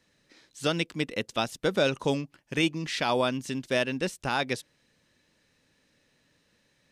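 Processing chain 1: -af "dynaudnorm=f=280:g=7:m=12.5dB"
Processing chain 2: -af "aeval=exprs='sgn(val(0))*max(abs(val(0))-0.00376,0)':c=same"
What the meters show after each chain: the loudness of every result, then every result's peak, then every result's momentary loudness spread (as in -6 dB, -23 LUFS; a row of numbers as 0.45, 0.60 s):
-18.5, -29.5 LUFS; -3.0, -14.0 dBFS; 9, 7 LU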